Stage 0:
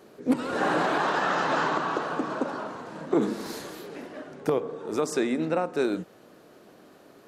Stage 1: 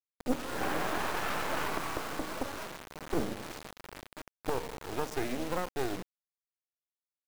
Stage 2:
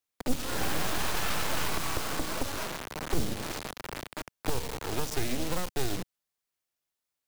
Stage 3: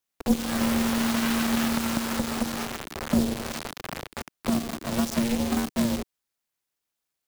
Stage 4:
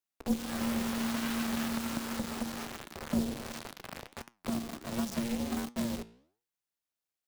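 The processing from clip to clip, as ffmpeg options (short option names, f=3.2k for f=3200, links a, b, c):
-af "adynamicsmooth=sensitivity=8:basefreq=2.5k,acrusher=bits=3:dc=4:mix=0:aa=0.000001,volume=-4dB"
-filter_complex "[0:a]acrossover=split=160|3000[a][b][c];[b]acompressor=threshold=-42dB:ratio=6[d];[a][d][c]amix=inputs=3:normalize=0,volume=9dB"
-af "aeval=exprs='val(0)*sin(2*PI*230*n/s)':c=same,volume=5.5dB"
-af "flanger=delay=8.3:depth=9.6:regen=84:speed=1.4:shape=sinusoidal,volume=-4dB"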